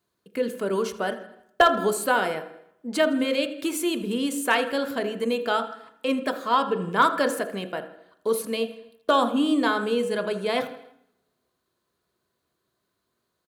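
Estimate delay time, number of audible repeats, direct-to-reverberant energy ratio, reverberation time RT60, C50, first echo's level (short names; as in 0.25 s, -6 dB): 81 ms, 4, 7.0 dB, 0.75 s, 10.5 dB, -17.5 dB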